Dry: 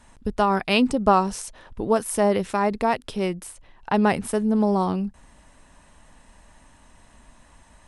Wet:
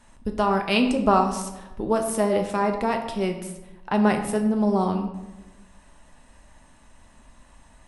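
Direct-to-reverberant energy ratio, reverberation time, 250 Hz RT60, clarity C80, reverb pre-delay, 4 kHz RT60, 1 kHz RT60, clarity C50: 4.0 dB, 1.0 s, 1.3 s, 10.0 dB, 3 ms, 0.65 s, 1.0 s, 8.0 dB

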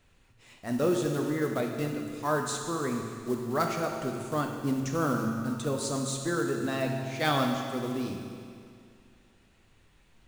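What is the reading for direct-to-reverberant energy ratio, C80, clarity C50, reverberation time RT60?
1.5 dB, 4.5 dB, 3.0 dB, 2.3 s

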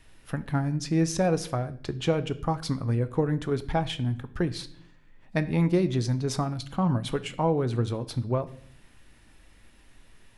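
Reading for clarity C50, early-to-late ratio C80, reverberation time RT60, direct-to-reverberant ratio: 16.5 dB, 19.5 dB, 0.60 s, 11.0 dB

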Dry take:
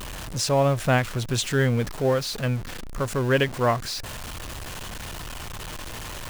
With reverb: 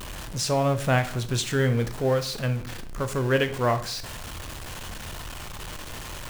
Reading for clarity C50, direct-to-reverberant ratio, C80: 13.0 dB, 9.0 dB, 16.5 dB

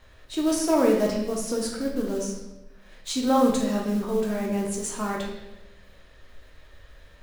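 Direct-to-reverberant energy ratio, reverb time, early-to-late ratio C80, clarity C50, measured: -1.5 dB, 1.0 s, 6.5 dB, 3.5 dB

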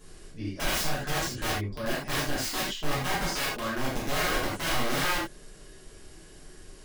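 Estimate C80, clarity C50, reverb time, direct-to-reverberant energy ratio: 6.0 dB, 1.5 dB, not exponential, -9.5 dB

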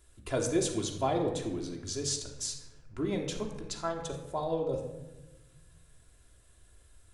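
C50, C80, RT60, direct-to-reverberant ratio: 6.0 dB, 8.5 dB, 1.1 s, 1.0 dB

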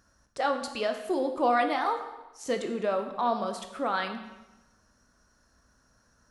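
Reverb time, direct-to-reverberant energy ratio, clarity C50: 1.0 s, 5.5 dB, 8.5 dB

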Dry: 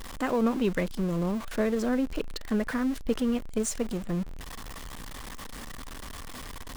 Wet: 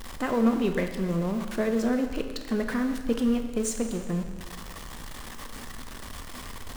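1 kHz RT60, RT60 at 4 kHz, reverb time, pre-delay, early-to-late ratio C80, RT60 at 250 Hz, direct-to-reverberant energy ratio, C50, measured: 1.6 s, 1.5 s, 1.6 s, 5 ms, 9.0 dB, 1.5 s, 5.5 dB, 7.5 dB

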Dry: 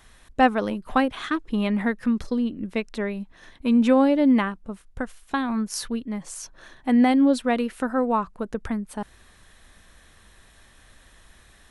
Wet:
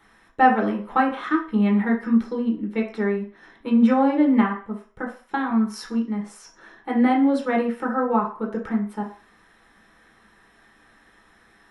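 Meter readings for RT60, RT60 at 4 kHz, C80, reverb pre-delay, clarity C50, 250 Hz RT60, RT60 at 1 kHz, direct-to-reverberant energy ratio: 0.45 s, 0.50 s, 13.0 dB, 3 ms, 8.5 dB, 0.30 s, 0.50 s, -2.0 dB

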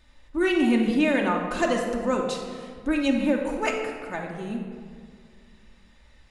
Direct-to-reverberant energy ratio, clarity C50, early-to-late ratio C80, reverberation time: -0.5 dB, 4.0 dB, 5.5 dB, 2.0 s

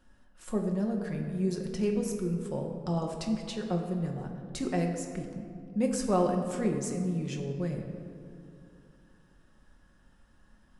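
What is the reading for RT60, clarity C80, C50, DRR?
2.5 s, 6.5 dB, 5.0 dB, 1.5 dB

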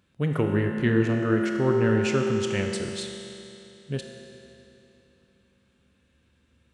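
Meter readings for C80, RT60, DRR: 4.0 dB, 3.0 s, 2.0 dB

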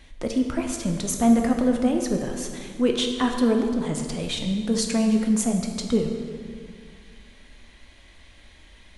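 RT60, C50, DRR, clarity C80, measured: 2.0 s, 5.0 dB, 3.0 dB, 6.5 dB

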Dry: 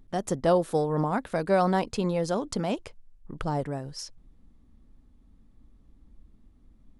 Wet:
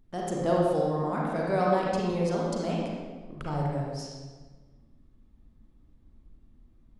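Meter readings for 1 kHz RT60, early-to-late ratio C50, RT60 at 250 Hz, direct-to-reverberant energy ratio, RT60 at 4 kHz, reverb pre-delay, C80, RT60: 1.3 s, -1.5 dB, 1.7 s, -4.0 dB, 1.0 s, 34 ms, 1.5 dB, 1.4 s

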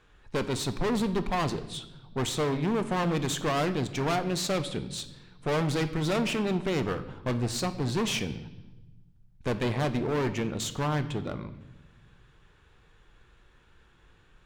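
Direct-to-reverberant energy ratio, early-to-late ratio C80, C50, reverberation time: 10.0 dB, 15.5 dB, 13.0 dB, 1.1 s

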